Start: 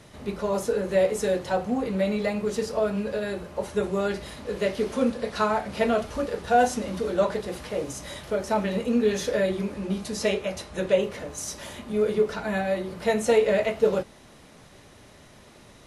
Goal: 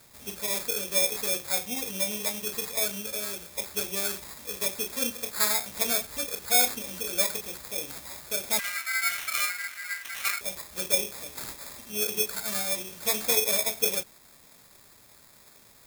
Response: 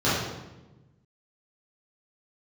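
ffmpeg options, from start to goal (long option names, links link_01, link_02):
-filter_complex "[0:a]acrusher=samples=15:mix=1:aa=0.000001,asettb=1/sr,asplit=3[link_01][link_02][link_03];[link_01]atrim=end=8.594[link_04];[link_02]atrim=start=8.59:end=10.41,asetpts=PTS-STARTPTS,afade=type=in:duration=0.004:curve=qsin,afade=type=out:start_time=1.816:duration=0.004:curve=qsin,aeval=exprs='val(0)*sin(2*PI*1800*n/s)':channel_layout=same[link_05];[link_03]atrim=start=10.406[link_06];[link_04][link_05]acrossfade=duration=0.004:curve1=hsin:curve2=qsin[link_07];[link_07][link_06]acrossfade=duration=0.004:curve1=qsin:curve2=hsin,crystalizer=i=9:c=0,volume=-13dB"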